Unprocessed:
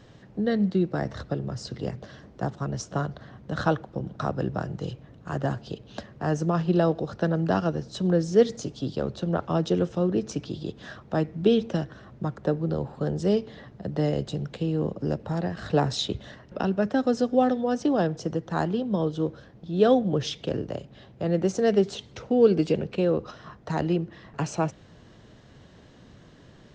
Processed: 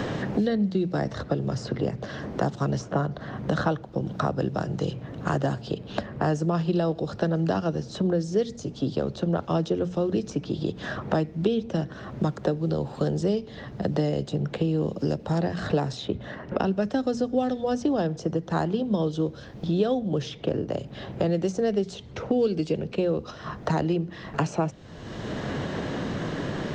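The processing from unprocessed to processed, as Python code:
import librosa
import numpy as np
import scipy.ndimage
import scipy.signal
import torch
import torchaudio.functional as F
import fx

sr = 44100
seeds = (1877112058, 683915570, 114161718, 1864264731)

y = fx.notch(x, sr, hz=6100.0, q=12.0, at=(5.5, 7.22))
y = fx.hum_notches(y, sr, base_hz=60, count=4)
y = fx.dynamic_eq(y, sr, hz=1600.0, q=0.82, threshold_db=-43.0, ratio=4.0, max_db=-3)
y = fx.band_squash(y, sr, depth_pct=100)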